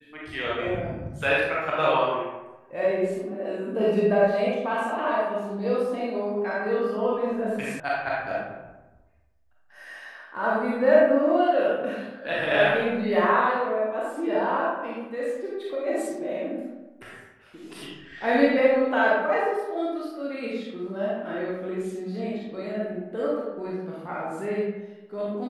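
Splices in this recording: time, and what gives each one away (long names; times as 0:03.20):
0:07.80: cut off before it has died away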